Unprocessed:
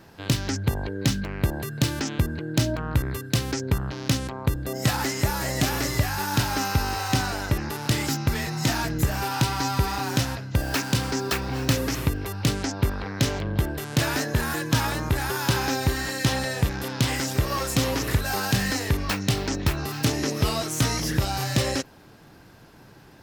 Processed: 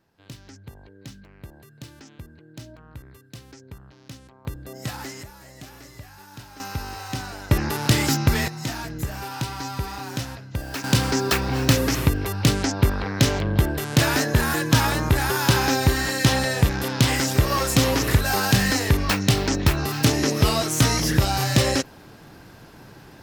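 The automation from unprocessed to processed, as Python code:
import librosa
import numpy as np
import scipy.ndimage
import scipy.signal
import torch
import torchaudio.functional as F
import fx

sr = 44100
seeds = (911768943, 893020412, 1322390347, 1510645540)

y = fx.gain(x, sr, db=fx.steps((0.0, -18.0), (4.45, -8.5), (5.23, -18.5), (6.6, -7.0), (7.51, 5.0), (8.48, -5.5), (10.84, 4.5)))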